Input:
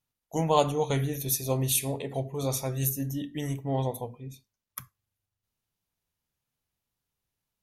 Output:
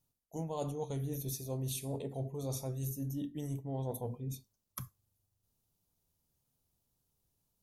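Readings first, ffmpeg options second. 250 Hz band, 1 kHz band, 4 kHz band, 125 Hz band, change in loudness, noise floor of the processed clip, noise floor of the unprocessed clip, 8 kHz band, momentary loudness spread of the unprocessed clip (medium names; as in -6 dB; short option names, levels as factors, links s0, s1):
-7.5 dB, -15.5 dB, -13.5 dB, -7.0 dB, -10.5 dB, -83 dBFS, under -85 dBFS, -13.0 dB, 19 LU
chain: -filter_complex "[0:a]acrossover=split=5600[s0][s1];[s1]acompressor=threshold=0.0158:ratio=4:attack=1:release=60[s2];[s0][s2]amix=inputs=2:normalize=0,equalizer=f=2000:t=o:w=1.9:g=-14,areverse,acompressor=threshold=0.00708:ratio=6,areverse,volume=2.11"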